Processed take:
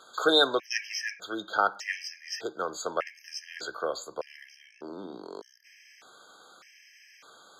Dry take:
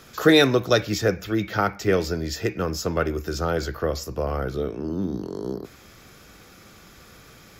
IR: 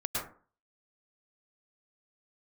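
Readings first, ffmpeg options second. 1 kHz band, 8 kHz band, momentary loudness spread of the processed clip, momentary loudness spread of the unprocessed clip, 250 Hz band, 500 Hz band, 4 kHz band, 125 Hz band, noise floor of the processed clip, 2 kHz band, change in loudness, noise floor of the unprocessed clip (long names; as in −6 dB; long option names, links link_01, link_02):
−2.5 dB, −5.0 dB, 21 LU, 13 LU, −14.5 dB, −9.0 dB, −1.5 dB, −29.5 dB, −58 dBFS, −4.5 dB, −6.0 dB, −49 dBFS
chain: -af "highpass=640,lowpass=7400,afftfilt=real='re*gt(sin(2*PI*0.83*pts/sr)*(1-2*mod(floor(b*sr/1024/1600),2)),0)':imag='im*gt(sin(2*PI*0.83*pts/sr)*(1-2*mod(floor(b*sr/1024/1600),2)),0)':win_size=1024:overlap=0.75"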